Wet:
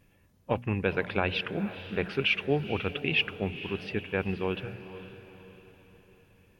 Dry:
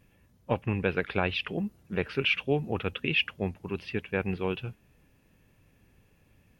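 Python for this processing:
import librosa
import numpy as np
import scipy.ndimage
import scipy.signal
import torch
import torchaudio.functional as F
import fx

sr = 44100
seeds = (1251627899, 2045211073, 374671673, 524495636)

y = fx.hum_notches(x, sr, base_hz=60, count=4)
y = fx.echo_diffused(y, sr, ms=477, feedback_pct=46, wet_db=-13)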